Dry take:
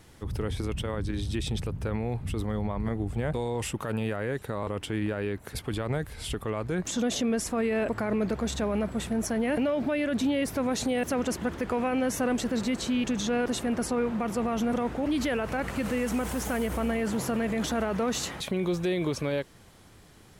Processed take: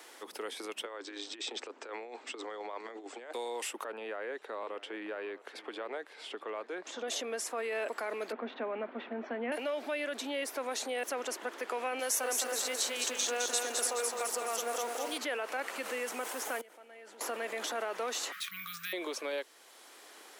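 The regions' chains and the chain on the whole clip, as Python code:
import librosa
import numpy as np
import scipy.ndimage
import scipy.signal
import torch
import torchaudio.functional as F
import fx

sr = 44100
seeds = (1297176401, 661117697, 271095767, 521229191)

y = fx.chain(x, sr, fx.cheby1_bandpass(low_hz=240.0, high_hz=7800.0, order=5),
    fx.over_compress(threshold_db=-37.0, ratio=-0.5), at=(0.85, 3.33))
y = fx.chain(y, sr, fx.highpass(hz=170.0, slope=12),
    fx.spacing_loss(db_at_10k=23),
    fx.echo_single(ms=639, db=-18.5), at=(3.84, 7.08))
y = fx.chain(y, sr, fx.bessel_lowpass(hz=1800.0, order=6),
    fx.peak_eq(hz=240.0, db=13.0, octaves=0.39), at=(8.32, 9.52))
y = fx.chain(y, sr, fx.bass_treble(bass_db=-10, treble_db=13),
    fx.echo_crushed(ms=211, feedback_pct=55, bits=8, wet_db=-4), at=(11.99, 15.18))
y = fx.chain(y, sr, fx.high_shelf(hz=11000.0, db=-10.5),
    fx.notch(hz=1100.0, q=7.0),
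    fx.level_steps(step_db=24), at=(16.61, 17.21))
y = fx.chain(y, sr, fx.peak_eq(hz=180.0, db=13.5, octaves=2.0),
    fx.resample_bad(factor=3, down='none', up='hold'),
    fx.brickwall_bandstop(low_hz=180.0, high_hz=1100.0), at=(18.32, 18.93))
y = scipy.signal.sosfilt(scipy.signal.bessel(8, 550.0, 'highpass', norm='mag', fs=sr, output='sos'), y)
y = fx.band_squash(y, sr, depth_pct=40)
y = y * 10.0 ** (-3.0 / 20.0)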